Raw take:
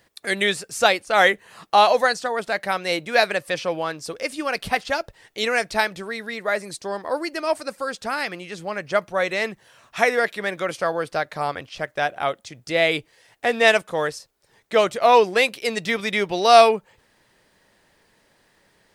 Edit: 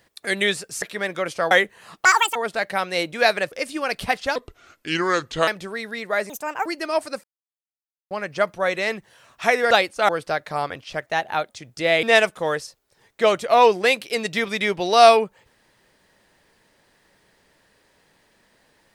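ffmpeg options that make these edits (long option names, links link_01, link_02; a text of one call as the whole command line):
ffmpeg -i in.wav -filter_complex "[0:a]asplit=17[link_01][link_02][link_03][link_04][link_05][link_06][link_07][link_08][link_09][link_10][link_11][link_12][link_13][link_14][link_15][link_16][link_17];[link_01]atrim=end=0.822[link_18];[link_02]atrim=start=10.248:end=10.942[link_19];[link_03]atrim=start=1.198:end=1.744[link_20];[link_04]atrim=start=1.74:end=2.29,asetpts=PTS-STARTPTS,asetrate=79380,aresample=44100[link_21];[link_05]atrim=start=2.286:end=3.452[link_22];[link_06]atrim=start=4.148:end=4.994[link_23];[link_07]atrim=start=4.99:end=5.83,asetpts=PTS-STARTPTS,asetrate=33075,aresample=44100[link_24];[link_08]atrim=start=5.826:end=6.654[link_25];[link_09]atrim=start=6.65:end=7.2,asetpts=PTS-STARTPTS,asetrate=67032,aresample=44100,atrim=end_sample=15957,asetpts=PTS-STARTPTS[link_26];[link_10]atrim=start=7.196:end=7.78,asetpts=PTS-STARTPTS,afade=type=out:start_time=0.58:duration=0.004:curve=hsin[link_27];[link_11]atrim=start=7.78:end=8.65,asetpts=PTS-STARTPTS,volume=0[link_28];[link_12]atrim=start=8.65:end=10.252,asetpts=PTS-STARTPTS,afade=type=in:duration=0.004:curve=hsin[link_29];[link_13]atrim=start=0.818:end=1.202[link_30];[link_14]atrim=start=10.938:end=11.924[link_31];[link_15]atrim=start=11.92:end=12.4,asetpts=PTS-STARTPTS,asetrate=48951,aresample=44100,atrim=end_sample=19070,asetpts=PTS-STARTPTS[link_32];[link_16]atrim=start=12.396:end=12.932[link_33];[link_17]atrim=start=13.548[link_34];[link_18][link_19]acrossfade=duration=0.004:curve1=hsin:curve2=hsin[link_35];[link_35][link_20]acrossfade=duration=0.004:curve1=hsin:curve2=hsin[link_36];[link_36][link_21]acrossfade=duration=0.004:curve1=hsin:curve2=hsin[link_37];[link_37][link_22]acrossfade=duration=0.004:curve1=hsin:curve2=hsin[link_38];[link_38][link_23]acrossfade=duration=0.004:curve1=hsin:curve2=hsin[link_39];[link_39][link_24]acrossfade=duration=0.004:curve1=hsin:curve2=hsin[link_40];[link_40][link_25]acrossfade=duration=0.004:curve1=hsin:curve2=hsin[link_41];[link_41][link_26]acrossfade=duration=0.004:curve1=hsin:curve2=hsin[link_42];[link_27][link_28][link_29]concat=n=3:v=0:a=1[link_43];[link_42][link_43]acrossfade=duration=0.004:curve1=hsin:curve2=hsin[link_44];[link_44][link_30]acrossfade=duration=0.004:curve1=hsin:curve2=hsin[link_45];[link_45][link_31]acrossfade=duration=0.004:curve1=hsin:curve2=hsin[link_46];[link_46][link_32]acrossfade=duration=0.004:curve1=hsin:curve2=hsin[link_47];[link_47][link_33]acrossfade=duration=0.004:curve1=hsin:curve2=hsin[link_48];[link_48][link_34]acrossfade=duration=0.004:curve1=hsin:curve2=hsin" out.wav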